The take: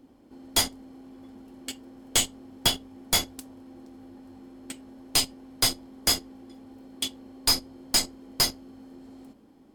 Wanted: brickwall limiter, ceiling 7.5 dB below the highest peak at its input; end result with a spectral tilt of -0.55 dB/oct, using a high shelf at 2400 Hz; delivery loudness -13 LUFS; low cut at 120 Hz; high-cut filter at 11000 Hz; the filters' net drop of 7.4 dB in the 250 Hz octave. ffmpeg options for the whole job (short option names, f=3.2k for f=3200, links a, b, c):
-af "highpass=120,lowpass=11k,equalizer=f=250:t=o:g=-8.5,highshelf=f=2.4k:g=5.5,volume=15dB,alimiter=limit=0dB:level=0:latency=1"